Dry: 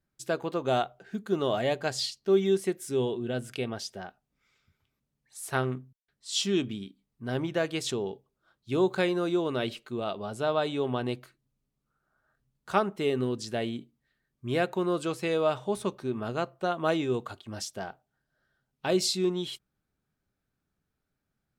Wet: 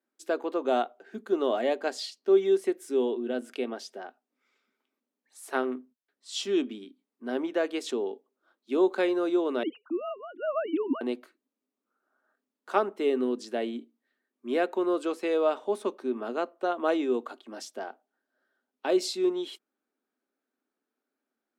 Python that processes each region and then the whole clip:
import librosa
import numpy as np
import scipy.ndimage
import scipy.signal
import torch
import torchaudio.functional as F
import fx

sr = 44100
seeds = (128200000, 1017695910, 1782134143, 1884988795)

y = fx.chain(x, sr, fx.sine_speech(),
    fx.low_shelf_res(hz=310.0, db=13.0, q=3.0), at=(9.63, 11.01))
y = scipy.signal.sosfilt(scipy.signal.cheby1(5, 1.0, 240.0, 'highpass', fs=sr, output='sos'), y)
y = fx.high_shelf(y, sr, hz=2200.0, db=-9.5)
y = y * 10.0 ** (2.5 / 20.0)